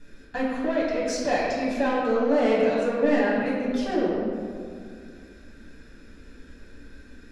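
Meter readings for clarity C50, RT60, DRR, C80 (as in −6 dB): −1.0 dB, 2.2 s, −8.0 dB, 0.5 dB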